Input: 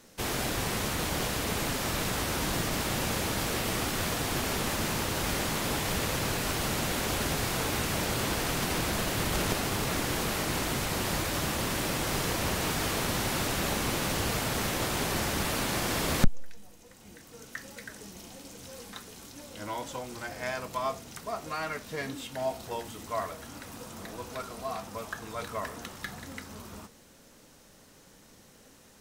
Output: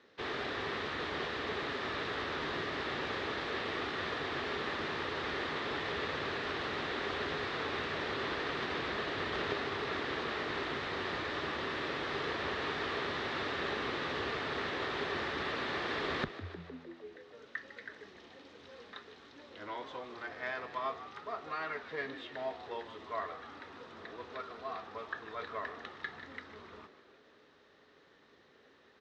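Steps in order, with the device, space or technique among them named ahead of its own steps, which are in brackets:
frequency-shifting delay pedal into a guitar cabinet (echo with shifted repeats 152 ms, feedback 62%, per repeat +83 Hz, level −14 dB; loudspeaker in its box 96–4,100 Hz, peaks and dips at 120 Hz −8 dB, 190 Hz −9 dB, 410 Hz +8 dB, 1,200 Hz +6 dB, 1,800 Hz +8 dB, 3,700 Hz +5 dB)
level −8 dB

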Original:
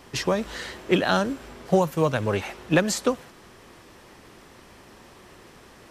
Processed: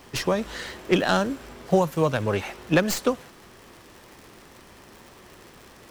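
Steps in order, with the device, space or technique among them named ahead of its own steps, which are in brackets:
record under a worn stylus (stylus tracing distortion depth 0.057 ms; surface crackle 110 per second −37 dBFS; white noise bed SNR 40 dB)

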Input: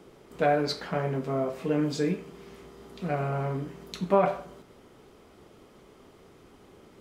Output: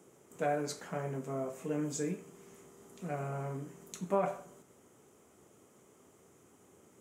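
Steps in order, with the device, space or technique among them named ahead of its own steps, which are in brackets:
budget condenser microphone (high-pass filter 81 Hz 24 dB per octave; high shelf with overshoot 5,600 Hz +8 dB, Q 3)
level −8.5 dB

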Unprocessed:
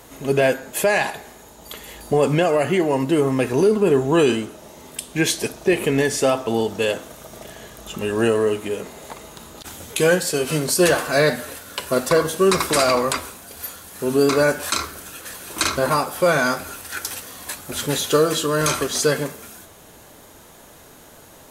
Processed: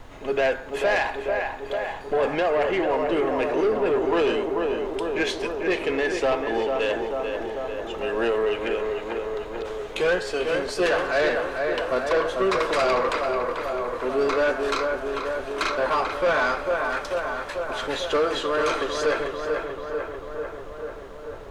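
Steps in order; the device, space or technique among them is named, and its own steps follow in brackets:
0:08.46–0:09.04: parametric band 2,400 Hz +6 dB 1.2 octaves
tape delay 442 ms, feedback 78%, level −5 dB, low-pass 2,200 Hz
aircraft cabin announcement (band-pass filter 430–3,000 Hz; soft clipping −16 dBFS, distortion −14 dB; brown noise bed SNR 18 dB)

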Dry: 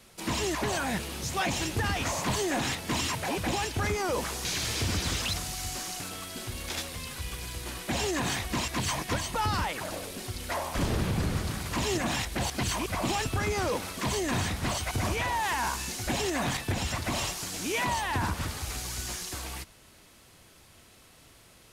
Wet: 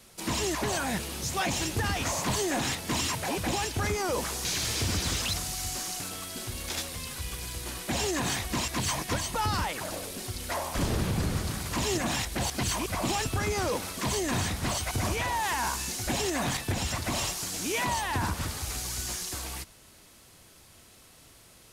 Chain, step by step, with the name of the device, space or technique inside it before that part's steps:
exciter from parts (in parallel at −6 dB: high-pass filter 3,600 Hz 12 dB per octave + soft clipping −29 dBFS, distortion −20 dB)

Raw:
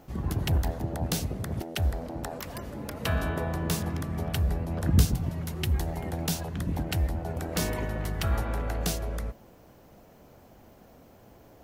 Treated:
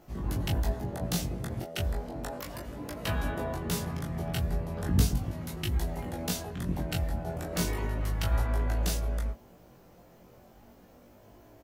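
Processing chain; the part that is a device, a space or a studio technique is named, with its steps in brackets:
double-tracked vocal (double-tracking delay 17 ms −4.5 dB; chorus effect 0.35 Hz, delay 20 ms, depth 2.9 ms)

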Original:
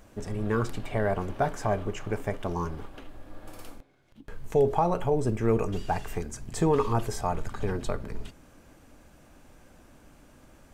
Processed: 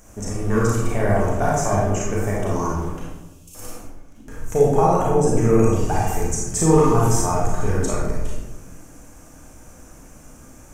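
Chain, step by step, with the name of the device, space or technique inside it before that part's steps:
0:03.03–0:03.55: elliptic high-pass filter 2,700 Hz
high shelf with overshoot 5,100 Hz +7 dB, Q 3
bathroom (convolution reverb RT60 1.1 s, pre-delay 29 ms, DRR −5 dB)
level +2 dB

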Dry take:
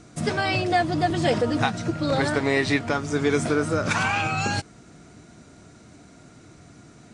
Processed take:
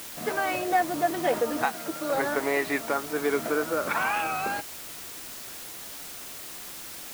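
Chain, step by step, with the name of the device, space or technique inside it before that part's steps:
wax cylinder (band-pass filter 380–2,000 Hz; tape wow and flutter; white noise bed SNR 11 dB)
0:01.65–0:02.15: high-pass filter 210 Hz 6 dB per octave
level −1 dB

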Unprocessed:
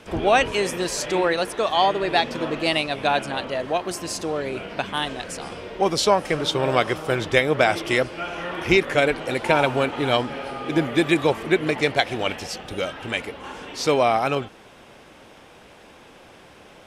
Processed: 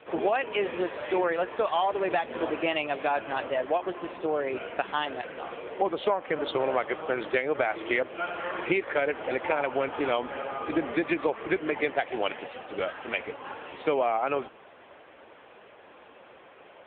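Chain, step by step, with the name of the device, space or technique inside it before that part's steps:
voicemail (band-pass filter 340–2,700 Hz; downward compressor 8 to 1, threshold −22 dBFS, peak gain reduction 10 dB; level +1 dB; AMR narrowband 6.7 kbit/s 8,000 Hz)

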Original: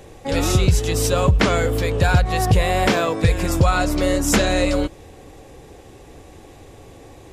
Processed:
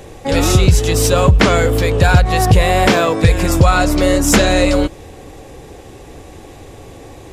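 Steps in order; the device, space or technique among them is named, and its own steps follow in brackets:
parallel distortion (in parallel at −13 dB: hard clipping −21.5 dBFS, distortion −6 dB)
on the sum: level +5 dB

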